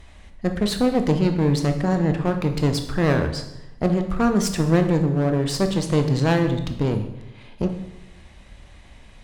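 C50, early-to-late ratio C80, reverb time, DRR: 9.5 dB, 11.5 dB, 0.85 s, 6.0 dB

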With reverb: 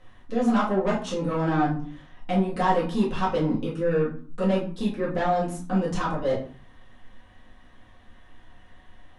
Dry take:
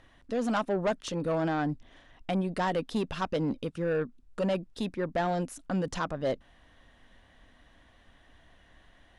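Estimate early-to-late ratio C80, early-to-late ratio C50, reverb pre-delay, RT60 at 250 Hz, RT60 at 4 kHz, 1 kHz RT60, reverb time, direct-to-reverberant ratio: 12.0 dB, 7.5 dB, 4 ms, 0.60 s, 0.30 s, 0.50 s, 0.45 s, −9.0 dB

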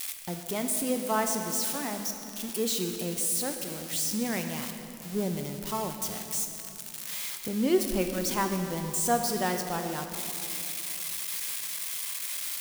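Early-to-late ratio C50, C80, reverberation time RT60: 6.0 dB, 6.5 dB, 2.9 s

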